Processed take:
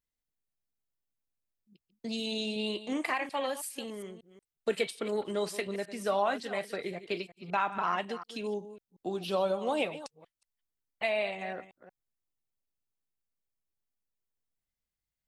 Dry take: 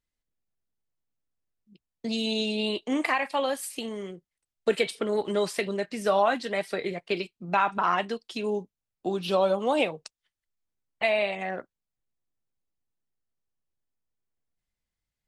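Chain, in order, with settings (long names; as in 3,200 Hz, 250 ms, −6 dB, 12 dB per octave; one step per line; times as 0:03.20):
delay that plays each chunk backwards 183 ms, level −13 dB
high-shelf EQ 11,000 Hz +7.5 dB
level −6 dB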